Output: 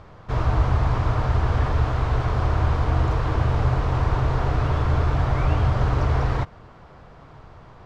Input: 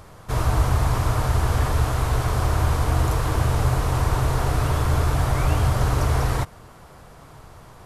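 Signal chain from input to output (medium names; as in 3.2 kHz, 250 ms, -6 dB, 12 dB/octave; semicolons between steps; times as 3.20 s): distance through air 190 m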